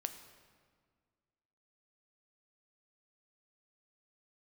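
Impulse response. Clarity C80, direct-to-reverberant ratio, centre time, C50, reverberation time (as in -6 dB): 11.0 dB, 8.0 dB, 18 ms, 10.0 dB, 1.8 s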